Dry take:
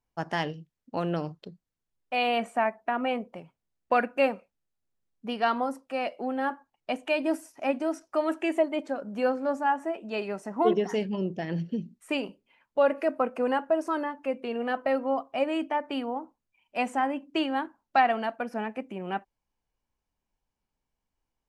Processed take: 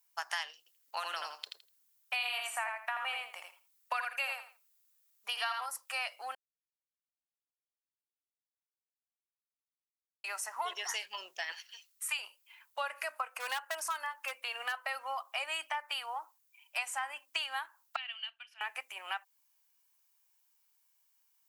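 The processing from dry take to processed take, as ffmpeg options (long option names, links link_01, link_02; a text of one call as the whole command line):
ffmpeg -i in.wav -filter_complex "[0:a]asettb=1/sr,asplit=3[link_01][link_02][link_03];[link_01]atrim=end=0.584[link_04];[link_02]atrim=start=0.58:end=5.66,asetpts=PTS-STARTPTS,afade=type=in:duration=0.004:curve=qsin,afade=type=out:start_time=5.076:duration=0.004:curve=qsin,aecho=1:1:82|164|246:0.596|0.101|0.0172,atrim=end_sample=224028[link_05];[link_03]atrim=start=5.656[link_06];[link_04][link_05]acrossfade=duration=0.004:curve1=hsin:curve2=qsin[link_07];[link_07][link_06]acrossfade=duration=0.004:curve1=qsin:curve2=hsin,asettb=1/sr,asplit=3[link_08][link_09][link_10];[link_08]atrim=end=11.524[link_11];[link_09]atrim=start=11.52:end=12.19,asetpts=PTS-STARTPTS,afade=type=in:duration=0.004:curve=qsin,afade=type=out:start_time=0.666:duration=0.004:curve=qsin,highpass=frequency=830:width=0.5412,highpass=frequency=830:width=1.3066[link_12];[link_10]atrim=start=12.186[link_13];[link_11][link_12]acrossfade=duration=0.004:curve1=hsin:curve2=qsin[link_14];[link_14][link_13]acrossfade=duration=0.004:curve1=qsin:curve2=hsin,asplit=3[link_15][link_16][link_17];[link_15]afade=type=out:start_time=13.38:duration=0.02[link_18];[link_16]asoftclip=type=hard:threshold=-21.5dB,afade=type=in:start_time=13.38:duration=0.02,afade=type=out:start_time=14.71:duration=0.02[link_19];[link_17]afade=type=in:start_time=14.71:duration=0.02[link_20];[link_18][link_19][link_20]amix=inputs=3:normalize=0,asettb=1/sr,asplit=3[link_21][link_22][link_23];[link_21]atrim=end=17.964[link_24];[link_22]atrim=start=17.96:end=18.61,asetpts=PTS-STARTPTS,afade=type=in:duration=0.004:curve=qsin,afade=type=out:start_time=0.646:duration=0.004:curve=qsin,bandpass=frequency=3000:width_type=q:width=8.4[link_25];[link_23]atrim=start=18.606[link_26];[link_24][link_25]acrossfade=duration=0.004:curve1=hsin:curve2=qsin[link_27];[link_27][link_26]acrossfade=duration=0.004:curve1=qsin:curve2=hsin,asplit=3[link_28][link_29][link_30];[link_28]atrim=end=6.35,asetpts=PTS-STARTPTS,afade=type=out:start_time=6.346:duration=0.004:curve=hsin[link_31];[link_29]atrim=start=6.35:end=10.24,asetpts=PTS-STARTPTS,volume=0[link_32];[link_30]atrim=start=10.24,asetpts=PTS-STARTPTS,afade=type=in:duration=0.004:curve=hsin[link_33];[link_31][link_32][link_33]concat=n=3:v=0:a=1,highpass=frequency=980:width=0.5412,highpass=frequency=980:width=1.3066,aemphasis=mode=production:type=75fm,acompressor=threshold=-38dB:ratio=5,volume=4.5dB" out.wav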